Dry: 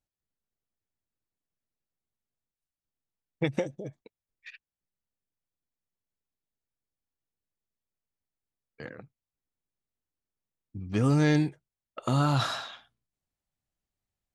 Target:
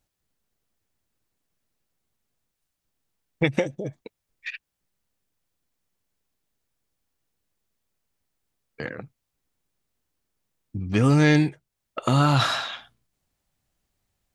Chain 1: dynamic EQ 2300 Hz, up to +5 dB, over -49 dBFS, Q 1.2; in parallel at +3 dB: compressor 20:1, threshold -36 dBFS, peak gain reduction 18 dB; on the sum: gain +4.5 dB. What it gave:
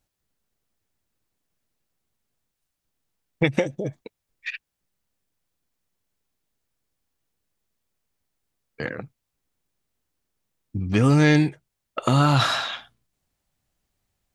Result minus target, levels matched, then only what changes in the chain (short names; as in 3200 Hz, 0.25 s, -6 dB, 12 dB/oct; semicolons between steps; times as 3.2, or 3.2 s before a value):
compressor: peak gain reduction -8 dB
change: compressor 20:1, threshold -44.5 dBFS, peak gain reduction 26.5 dB